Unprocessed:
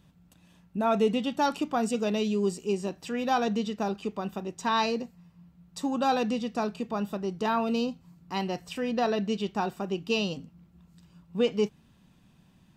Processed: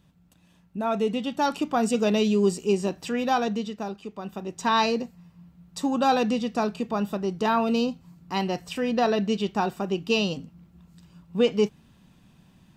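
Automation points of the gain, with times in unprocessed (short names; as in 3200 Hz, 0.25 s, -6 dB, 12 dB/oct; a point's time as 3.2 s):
1.04 s -1 dB
2.06 s +5.5 dB
3.02 s +5.5 dB
4.08 s -5 dB
4.61 s +4 dB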